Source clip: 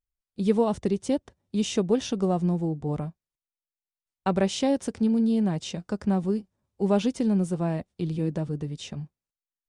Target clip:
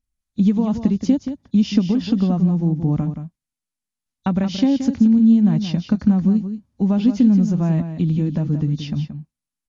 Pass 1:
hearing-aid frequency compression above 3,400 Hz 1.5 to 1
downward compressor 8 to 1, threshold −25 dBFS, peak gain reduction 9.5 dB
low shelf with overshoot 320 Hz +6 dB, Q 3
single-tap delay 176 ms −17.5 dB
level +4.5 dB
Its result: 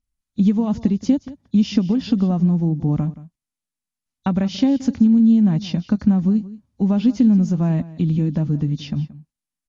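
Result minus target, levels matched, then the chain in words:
echo-to-direct −8 dB
hearing-aid frequency compression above 3,400 Hz 1.5 to 1
downward compressor 8 to 1, threshold −25 dBFS, peak gain reduction 9.5 dB
low shelf with overshoot 320 Hz +6 dB, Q 3
single-tap delay 176 ms −9.5 dB
level +4.5 dB

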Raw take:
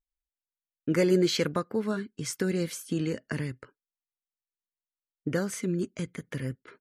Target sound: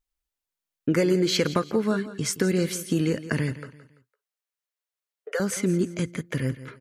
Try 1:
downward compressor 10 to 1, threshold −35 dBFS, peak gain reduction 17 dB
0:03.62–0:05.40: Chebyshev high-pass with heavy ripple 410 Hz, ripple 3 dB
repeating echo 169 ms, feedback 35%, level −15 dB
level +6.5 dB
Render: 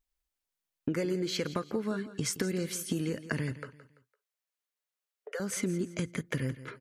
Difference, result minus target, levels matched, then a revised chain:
downward compressor: peak gain reduction +10 dB
downward compressor 10 to 1, threshold −24 dBFS, peak gain reduction 7 dB
0:03.62–0:05.40: Chebyshev high-pass with heavy ripple 410 Hz, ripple 3 dB
repeating echo 169 ms, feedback 35%, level −15 dB
level +6.5 dB

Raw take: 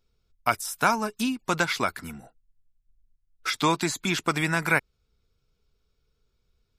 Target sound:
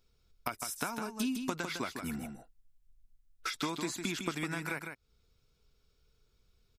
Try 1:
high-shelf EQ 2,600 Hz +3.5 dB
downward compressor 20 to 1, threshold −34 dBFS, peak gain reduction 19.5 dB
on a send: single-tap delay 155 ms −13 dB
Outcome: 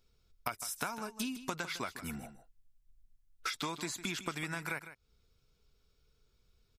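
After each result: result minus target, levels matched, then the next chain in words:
echo-to-direct −6.5 dB; 250 Hz band −3.5 dB
high-shelf EQ 2,600 Hz +3.5 dB
downward compressor 20 to 1, threshold −34 dBFS, peak gain reduction 19.5 dB
on a send: single-tap delay 155 ms −6.5 dB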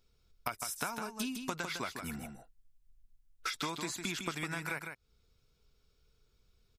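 250 Hz band −3.5 dB
high-shelf EQ 2,600 Hz +3.5 dB
downward compressor 20 to 1, threshold −34 dBFS, peak gain reduction 19.5 dB
dynamic equaliser 280 Hz, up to +6 dB, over −54 dBFS, Q 1.3
on a send: single-tap delay 155 ms −6.5 dB

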